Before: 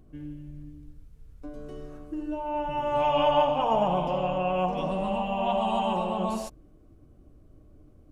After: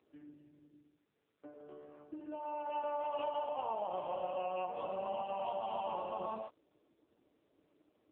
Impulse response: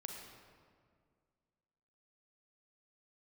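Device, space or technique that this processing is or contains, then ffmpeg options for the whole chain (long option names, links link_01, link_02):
voicemail: -filter_complex "[0:a]asplit=3[link_01][link_02][link_03];[link_01]afade=type=out:start_time=4.12:duration=0.02[link_04];[link_02]lowshelf=frequency=97:gain=-3,afade=type=in:start_time=4.12:duration=0.02,afade=type=out:start_time=5.67:duration=0.02[link_05];[link_03]afade=type=in:start_time=5.67:duration=0.02[link_06];[link_04][link_05][link_06]amix=inputs=3:normalize=0,highpass=420,lowpass=3000,acompressor=threshold=-28dB:ratio=12,volume=-4.5dB" -ar 8000 -c:a libopencore_amrnb -b:a 5900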